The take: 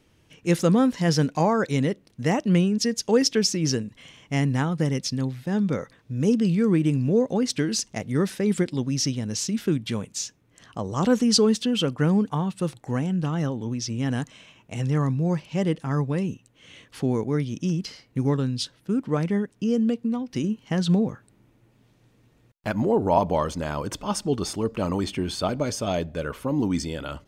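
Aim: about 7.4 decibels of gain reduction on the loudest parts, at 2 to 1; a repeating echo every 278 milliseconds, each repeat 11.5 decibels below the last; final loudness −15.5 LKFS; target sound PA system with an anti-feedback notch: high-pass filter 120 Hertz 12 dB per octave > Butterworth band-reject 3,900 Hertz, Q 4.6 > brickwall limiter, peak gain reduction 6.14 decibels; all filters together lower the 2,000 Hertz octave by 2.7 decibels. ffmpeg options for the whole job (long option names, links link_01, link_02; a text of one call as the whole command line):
ffmpeg -i in.wav -af "equalizer=frequency=2000:width_type=o:gain=-3.5,acompressor=threshold=-29dB:ratio=2,highpass=120,asuperstop=centerf=3900:order=8:qfactor=4.6,aecho=1:1:278|556|834:0.266|0.0718|0.0194,volume=16dB,alimiter=limit=-4.5dB:level=0:latency=1" out.wav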